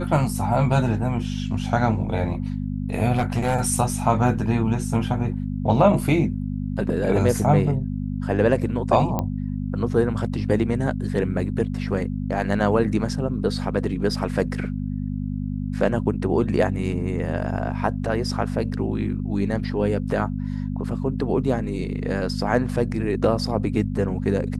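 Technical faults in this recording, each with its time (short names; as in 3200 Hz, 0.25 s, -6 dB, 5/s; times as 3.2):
hum 50 Hz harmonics 5 -27 dBFS
3.13–3.56 clipped -16.5 dBFS
9.19 pop -11 dBFS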